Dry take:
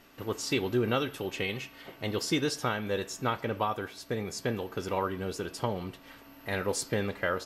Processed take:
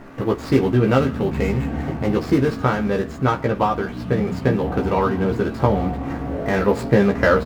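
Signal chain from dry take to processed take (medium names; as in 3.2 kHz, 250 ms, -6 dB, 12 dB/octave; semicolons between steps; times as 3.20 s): median filter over 15 samples; in parallel at +2 dB: compression, threshold -43 dBFS, peak gain reduction 18.5 dB; on the sum: doubling 15 ms -3 dB; on a send at -11 dB: speed mistake 78 rpm record played at 45 rpm + reverberation RT60 3.0 s, pre-delay 7 ms; on the sum: gain riding 2 s; tone controls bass +3 dB, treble -8 dB; trim +9 dB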